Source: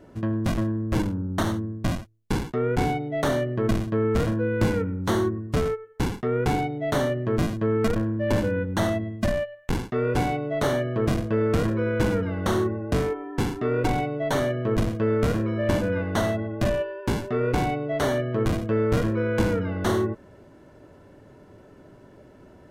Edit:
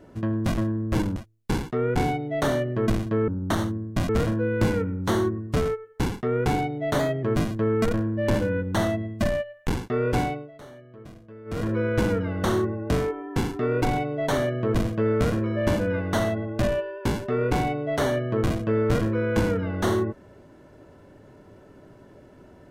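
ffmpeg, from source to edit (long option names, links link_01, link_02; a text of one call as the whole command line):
ffmpeg -i in.wav -filter_complex "[0:a]asplit=8[link_01][link_02][link_03][link_04][link_05][link_06][link_07][link_08];[link_01]atrim=end=1.162[link_09];[link_02]atrim=start=1.968:end=4.092[link_10];[link_03]atrim=start=1.158:end=1.972[link_11];[link_04]atrim=start=4.088:end=6.994[link_12];[link_05]atrim=start=6.99:end=7.25,asetpts=PTS-STARTPTS,asetrate=48069,aresample=44100,atrim=end_sample=10519,asetpts=PTS-STARTPTS[link_13];[link_06]atrim=start=7.246:end=10.53,asetpts=PTS-STARTPTS,afade=type=out:start_time=3.004:duration=0.28:silence=0.0891251[link_14];[link_07]atrim=start=10.53:end=11.47,asetpts=PTS-STARTPTS,volume=-21dB[link_15];[link_08]atrim=start=11.47,asetpts=PTS-STARTPTS,afade=type=in:duration=0.28:silence=0.0891251[link_16];[link_09][link_10]acrossfade=duration=0.004:curve1=hsin:curve2=hsin[link_17];[link_17][link_11]acrossfade=duration=0.004:curve1=hsin:curve2=hsin[link_18];[link_18][link_12]acrossfade=duration=0.004:curve1=hsin:curve2=hsin[link_19];[link_19][link_13]acrossfade=duration=0.004:curve1=hsin:curve2=hsin[link_20];[link_14][link_15][link_16]concat=n=3:v=0:a=1[link_21];[link_20][link_21]acrossfade=duration=0.004:curve1=hsin:curve2=hsin" out.wav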